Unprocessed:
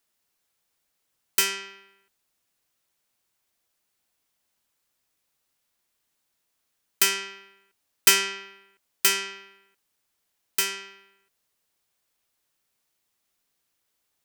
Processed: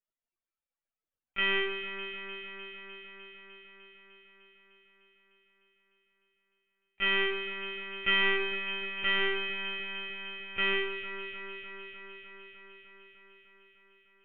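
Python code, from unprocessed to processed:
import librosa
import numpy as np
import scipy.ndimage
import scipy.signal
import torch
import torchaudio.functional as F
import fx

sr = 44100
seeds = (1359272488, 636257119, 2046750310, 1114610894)

p1 = fx.spec_topn(x, sr, count=64)
p2 = fx.fuzz(p1, sr, gain_db=40.0, gate_db=-43.0)
p3 = p1 + (p2 * librosa.db_to_amplitude(-4.0))
p4 = scipy.signal.sosfilt(scipy.signal.butter(4, 2900.0, 'lowpass', fs=sr, output='sos'), p3)
p5 = fx.lpc_vocoder(p4, sr, seeds[0], excitation='pitch_kept', order=16)
p6 = fx.low_shelf(p5, sr, hz=150.0, db=7.5)
p7 = p6 + fx.echo_alternate(p6, sr, ms=151, hz=2100.0, feedback_pct=86, wet_db=-7, dry=0)
y = p7 * librosa.db_to_amplitude(-8.5)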